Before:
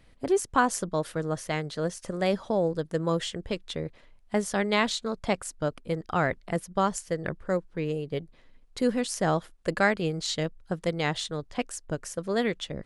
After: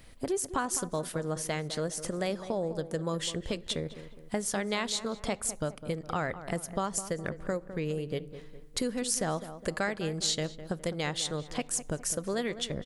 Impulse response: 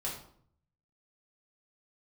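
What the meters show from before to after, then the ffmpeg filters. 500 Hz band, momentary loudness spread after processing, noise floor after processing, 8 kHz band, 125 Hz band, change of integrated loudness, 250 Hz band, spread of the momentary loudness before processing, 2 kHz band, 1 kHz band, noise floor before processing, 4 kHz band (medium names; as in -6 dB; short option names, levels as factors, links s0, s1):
-5.0 dB, 6 LU, -50 dBFS, +4.0 dB, -3.5 dB, -4.0 dB, -5.0 dB, 9 LU, -6.0 dB, -6.5 dB, -57 dBFS, -0.5 dB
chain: -filter_complex "[0:a]acompressor=threshold=0.0158:ratio=3,highshelf=f=6400:g=11.5,asplit=2[s0][s1];[s1]adelay=206,lowpass=f=1600:p=1,volume=0.251,asplit=2[s2][s3];[s3]adelay=206,lowpass=f=1600:p=1,volume=0.47,asplit=2[s4][s5];[s5]adelay=206,lowpass=f=1600:p=1,volume=0.47,asplit=2[s6][s7];[s7]adelay=206,lowpass=f=1600:p=1,volume=0.47,asplit=2[s8][s9];[s9]adelay=206,lowpass=f=1600:p=1,volume=0.47[s10];[s0][s2][s4][s6][s8][s10]amix=inputs=6:normalize=0,asplit=2[s11][s12];[1:a]atrim=start_sample=2205[s13];[s12][s13]afir=irnorm=-1:irlink=0,volume=0.0794[s14];[s11][s14]amix=inputs=2:normalize=0,volume=1.5"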